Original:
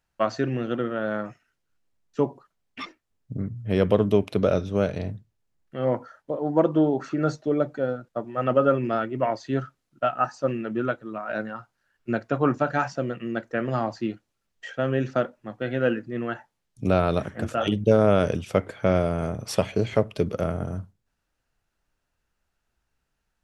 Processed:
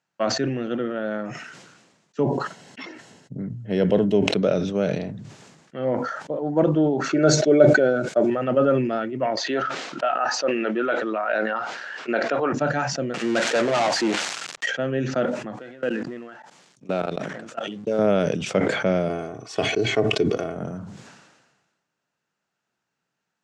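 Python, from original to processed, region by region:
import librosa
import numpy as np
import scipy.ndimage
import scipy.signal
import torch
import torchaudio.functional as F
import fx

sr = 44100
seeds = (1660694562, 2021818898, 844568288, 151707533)

y = fx.chain(x, sr, fx.peak_eq(hz=100.0, db=5.0, octaves=0.98),
    fx.notch_comb(f0_hz=1200.0), at=(2.23, 4.33))
y = fx.chain(y, sr, fx.high_shelf(hz=2600.0, db=9.0),
    fx.small_body(hz=(390.0, 600.0, 1500.0, 2200.0), ring_ms=30, db=11), at=(7.09, 8.3))
y = fx.chain(y, sr, fx.bandpass_edges(low_hz=480.0, high_hz=4300.0),
    fx.env_flatten(amount_pct=70), at=(9.37, 12.53))
y = fx.chain(y, sr, fx.crossing_spikes(level_db=-23.5),
    fx.bandpass_q(hz=920.0, q=0.97),
    fx.leveller(passes=5), at=(13.14, 14.66))
y = fx.chain(y, sr, fx.law_mismatch(coded='mu'),
    fx.highpass(hz=230.0, slope=6),
    fx.level_steps(step_db=23), at=(15.56, 17.99))
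y = fx.chain(y, sr, fx.comb(ms=2.7, depth=0.69),
    fx.upward_expand(threshold_db=-31.0, expansion=1.5), at=(19.08, 20.56))
y = scipy.signal.sosfilt(scipy.signal.cheby1(3, 1.0, [150.0, 7400.0], 'bandpass', fs=sr, output='sos'), y)
y = fx.dynamic_eq(y, sr, hz=1100.0, q=1.9, threshold_db=-41.0, ratio=4.0, max_db=-6)
y = fx.sustainer(y, sr, db_per_s=44.0)
y = y * librosa.db_to_amplitude(1.0)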